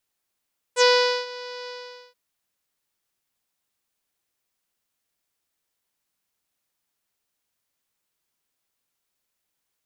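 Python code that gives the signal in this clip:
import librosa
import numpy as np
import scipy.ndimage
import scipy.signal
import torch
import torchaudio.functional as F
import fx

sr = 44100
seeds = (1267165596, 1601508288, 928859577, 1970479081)

y = fx.sub_voice(sr, note=71, wave='saw', cutoff_hz=4900.0, q=3.5, env_oct=1.0, env_s=0.07, attack_ms=56.0, decay_s=0.44, sustain_db=-20.5, release_s=0.46, note_s=0.92, slope=24)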